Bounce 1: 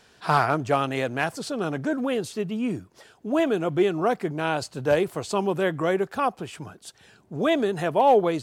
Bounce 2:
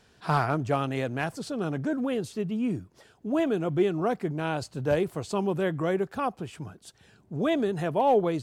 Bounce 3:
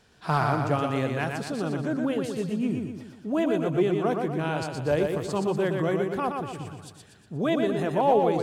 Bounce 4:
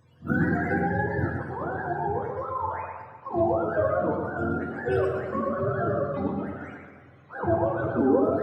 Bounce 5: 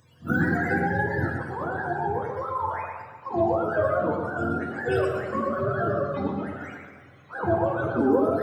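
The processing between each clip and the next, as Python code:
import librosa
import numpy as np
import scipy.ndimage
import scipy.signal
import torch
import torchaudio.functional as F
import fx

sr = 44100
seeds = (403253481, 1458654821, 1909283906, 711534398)

y1 = fx.low_shelf(x, sr, hz=270.0, db=9.0)
y1 = y1 * librosa.db_to_amplitude(-6.0)
y2 = fx.echo_feedback(y1, sr, ms=120, feedback_pct=49, wet_db=-4.5)
y3 = fx.octave_mirror(y2, sr, pivot_hz=470.0)
y3 = fx.rev_double_slope(y3, sr, seeds[0], early_s=0.75, late_s=3.1, knee_db=-18, drr_db=2.5)
y4 = fx.high_shelf(y3, sr, hz=2300.0, db=10.5)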